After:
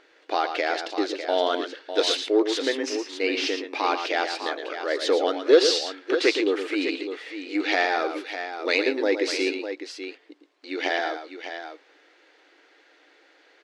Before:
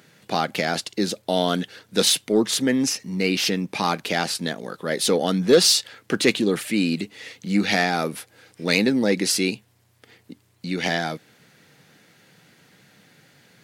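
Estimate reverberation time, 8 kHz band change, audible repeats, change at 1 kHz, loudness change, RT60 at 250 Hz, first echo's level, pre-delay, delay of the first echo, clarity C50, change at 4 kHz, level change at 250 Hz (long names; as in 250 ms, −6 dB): no reverb audible, −11.5 dB, 2, 0.0 dB, −3.0 dB, no reverb audible, −8.5 dB, no reverb audible, 114 ms, no reverb audible, −4.0 dB, −5.5 dB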